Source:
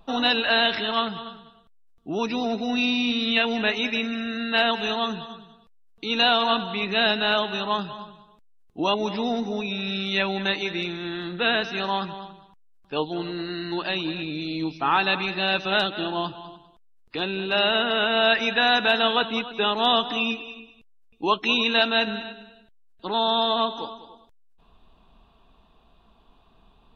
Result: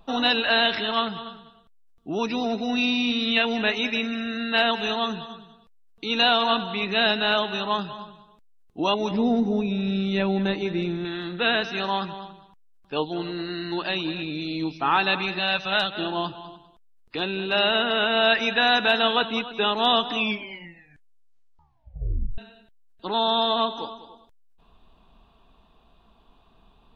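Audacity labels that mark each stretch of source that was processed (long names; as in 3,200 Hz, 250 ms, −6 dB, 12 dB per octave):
9.110000	11.050000	tilt shelving filter lows +8 dB, about 660 Hz
15.390000	15.950000	parametric band 320 Hz −13.5 dB
20.150000	20.150000	tape stop 2.23 s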